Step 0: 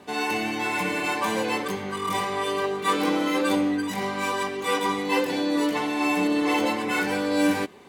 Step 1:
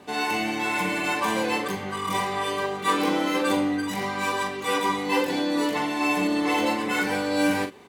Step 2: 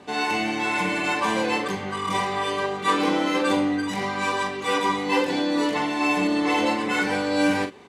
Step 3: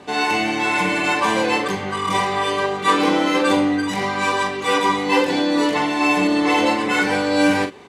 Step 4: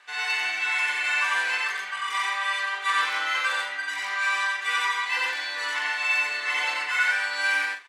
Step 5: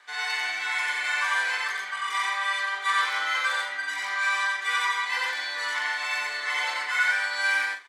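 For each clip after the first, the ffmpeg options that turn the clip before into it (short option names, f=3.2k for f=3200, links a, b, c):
-filter_complex "[0:a]asplit=2[a][b];[b]adelay=42,volume=-8dB[c];[a][c]amix=inputs=2:normalize=0"
-af "lowpass=8.1k,volume=1.5dB"
-af "equalizer=f=220:t=o:w=0.34:g=-3,volume=5dB"
-af "highpass=f=1.6k:t=q:w=2.3,aecho=1:1:90.38|131.2:0.891|0.316,volume=-9dB"
-filter_complex "[0:a]bandreject=f=2.7k:w=6.9,acrossover=split=400[a][b];[a]alimiter=level_in=32.5dB:limit=-24dB:level=0:latency=1:release=97,volume=-32.5dB[c];[c][b]amix=inputs=2:normalize=0"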